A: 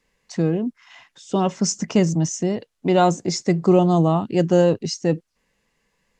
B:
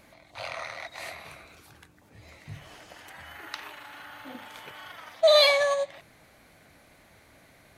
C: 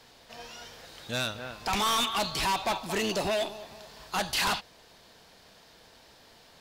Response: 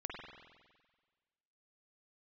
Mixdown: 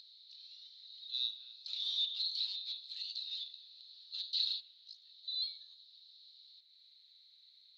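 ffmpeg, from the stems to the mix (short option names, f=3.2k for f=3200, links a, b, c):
-filter_complex "[0:a]acompressor=threshold=-30dB:ratio=1.5,tremolo=f=54:d=0.889,volume=-7dB[a];[1:a]acompressor=mode=upward:threshold=-30dB:ratio=2.5,volume=-12.5dB[b];[2:a]volume=2dB,asplit=2[c][d];[d]volume=-16.5dB[e];[3:a]atrim=start_sample=2205[f];[e][f]afir=irnorm=-1:irlink=0[g];[a][b][c][g]amix=inputs=4:normalize=0,asuperpass=centerf=4000:order=4:qfactor=6.3,acompressor=mode=upward:threshold=-53dB:ratio=2.5"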